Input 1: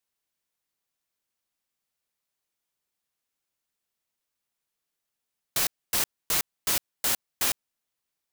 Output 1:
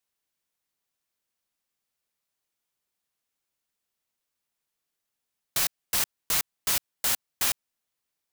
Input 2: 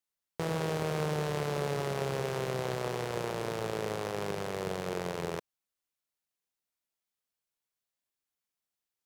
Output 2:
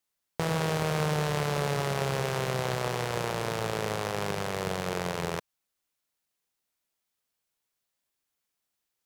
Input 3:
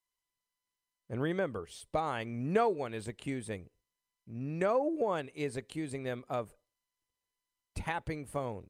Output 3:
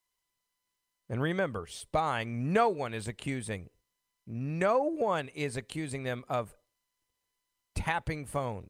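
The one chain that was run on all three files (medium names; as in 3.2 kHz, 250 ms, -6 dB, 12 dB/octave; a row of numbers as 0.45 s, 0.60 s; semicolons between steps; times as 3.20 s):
dynamic bell 360 Hz, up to -6 dB, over -47 dBFS, Q 0.99; peak normalisation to -12 dBFS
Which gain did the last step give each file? +0.5 dB, +6.5 dB, +5.5 dB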